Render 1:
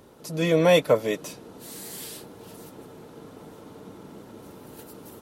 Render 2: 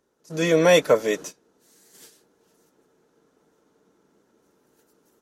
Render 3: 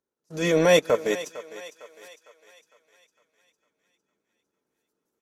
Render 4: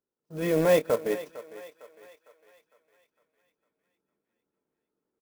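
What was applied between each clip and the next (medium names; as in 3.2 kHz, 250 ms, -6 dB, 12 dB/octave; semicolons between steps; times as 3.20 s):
gate -35 dBFS, range -21 dB; fifteen-band graphic EQ 100 Hz -10 dB, 400 Hz +4 dB, 1.6 kHz +7 dB, 6.3 kHz +10 dB
gate -47 dBFS, range -16 dB; transient shaper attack -7 dB, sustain -11 dB; thinning echo 455 ms, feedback 52%, high-pass 480 Hz, level -14 dB
tape spacing loss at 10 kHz 28 dB; doubling 26 ms -12.5 dB; sampling jitter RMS 0.03 ms; trim -2 dB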